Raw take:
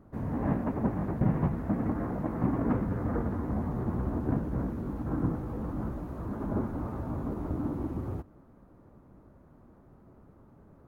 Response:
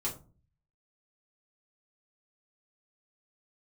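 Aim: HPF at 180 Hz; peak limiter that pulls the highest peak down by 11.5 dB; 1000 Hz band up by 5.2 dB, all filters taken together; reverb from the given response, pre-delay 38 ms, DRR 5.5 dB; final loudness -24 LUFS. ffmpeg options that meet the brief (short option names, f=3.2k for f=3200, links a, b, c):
-filter_complex "[0:a]highpass=180,equalizer=f=1k:t=o:g=6.5,alimiter=level_in=3dB:limit=-24dB:level=0:latency=1,volume=-3dB,asplit=2[a][b];[1:a]atrim=start_sample=2205,adelay=38[c];[b][c]afir=irnorm=-1:irlink=0,volume=-8.5dB[d];[a][d]amix=inputs=2:normalize=0,volume=11dB"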